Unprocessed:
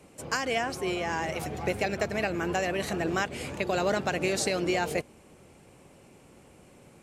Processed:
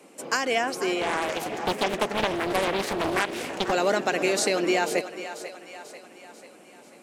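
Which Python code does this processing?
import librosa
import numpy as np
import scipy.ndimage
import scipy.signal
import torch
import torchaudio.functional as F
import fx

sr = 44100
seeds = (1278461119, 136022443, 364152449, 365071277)

y = scipy.signal.sosfilt(scipy.signal.butter(4, 220.0, 'highpass', fs=sr, output='sos'), x)
y = fx.echo_split(y, sr, split_hz=460.0, low_ms=239, high_ms=491, feedback_pct=52, wet_db=-12.0)
y = fx.doppler_dist(y, sr, depth_ms=0.72, at=(1.01, 3.72))
y = y * librosa.db_to_amplitude(4.0)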